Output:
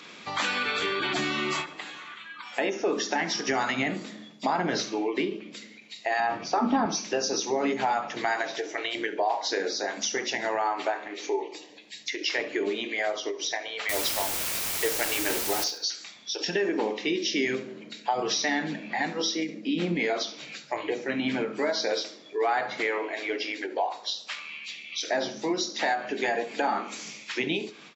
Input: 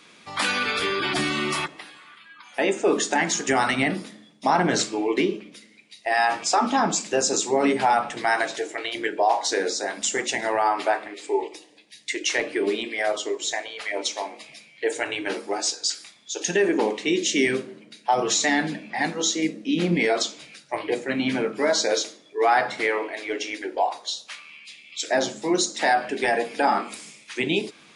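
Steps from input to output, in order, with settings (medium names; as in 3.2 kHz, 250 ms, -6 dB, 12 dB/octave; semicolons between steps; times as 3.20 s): knee-point frequency compression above 3.9 kHz 1.5:1; bass shelf 75 Hz -10.5 dB; compression 2:1, threshold -38 dBFS, peak gain reduction 12.5 dB; 6.20–6.86 s: RIAA curve playback; 13.89–15.64 s: word length cut 6-bit, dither triangular; on a send: feedback delay 70 ms, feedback 35%, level -17 dB; on the sum: endings held to a fixed fall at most 160 dB/s; trim +5.5 dB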